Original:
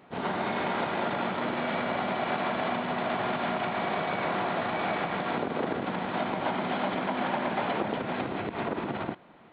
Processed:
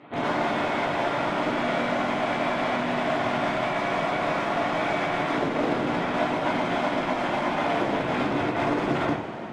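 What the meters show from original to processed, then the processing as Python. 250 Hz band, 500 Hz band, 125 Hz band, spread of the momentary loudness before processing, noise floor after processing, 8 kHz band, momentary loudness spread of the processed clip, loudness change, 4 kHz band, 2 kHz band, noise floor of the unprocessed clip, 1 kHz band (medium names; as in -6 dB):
+5.0 dB, +5.0 dB, +4.5 dB, 3 LU, -31 dBFS, no reading, 1 LU, +4.5 dB, +4.5 dB, +5.0 dB, -48 dBFS, +4.0 dB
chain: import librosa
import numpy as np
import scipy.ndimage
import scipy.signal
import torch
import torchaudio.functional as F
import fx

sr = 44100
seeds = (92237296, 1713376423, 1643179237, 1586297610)

p1 = scipy.signal.sosfilt(scipy.signal.butter(4, 66.0, 'highpass', fs=sr, output='sos'), x)
p2 = (np.mod(10.0 ** (27.5 / 20.0) * p1 + 1.0, 2.0) - 1.0) / 10.0 ** (27.5 / 20.0)
p3 = p1 + (p2 * 10.0 ** (-11.0 / 20.0))
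p4 = fx.rider(p3, sr, range_db=4, speed_s=0.5)
p5 = fx.air_absorb(p4, sr, metres=100.0)
y = fx.rev_double_slope(p5, sr, seeds[0], early_s=0.34, late_s=4.8, knee_db=-18, drr_db=-3.5)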